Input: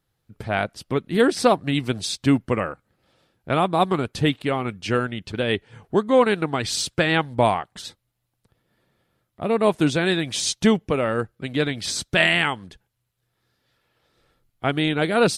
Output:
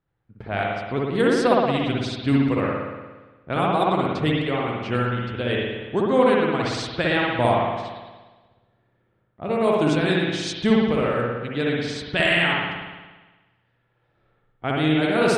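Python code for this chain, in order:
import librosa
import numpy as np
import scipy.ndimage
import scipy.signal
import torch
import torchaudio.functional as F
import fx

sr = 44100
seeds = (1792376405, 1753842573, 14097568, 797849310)

y = fx.env_lowpass(x, sr, base_hz=2100.0, full_db=-14.0)
y = fx.rev_spring(y, sr, rt60_s=1.3, pass_ms=(58,), chirp_ms=55, drr_db=-3.0)
y = y * 10.0 ** (-4.5 / 20.0)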